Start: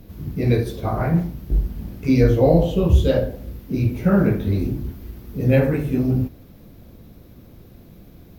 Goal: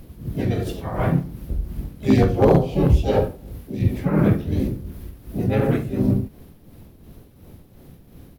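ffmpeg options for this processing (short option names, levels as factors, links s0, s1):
-filter_complex "[0:a]tremolo=f=2.8:d=0.57,asplit=4[s0][s1][s2][s3];[s1]asetrate=35002,aresample=44100,atempo=1.25992,volume=0.891[s4];[s2]asetrate=52444,aresample=44100,atempo=0.840896,volume=0.178[s5];[s3]asetrate=66075,aresample=44100,atempo=0.66742,volume=0.447[s6];[s0][s4][s5][s6]amix=inputs=4:normalize=0,aeval=exprs='0.562*(abs(mod(val(0)/0.562+3,4)-2)-1)':c=same,volume=0.841"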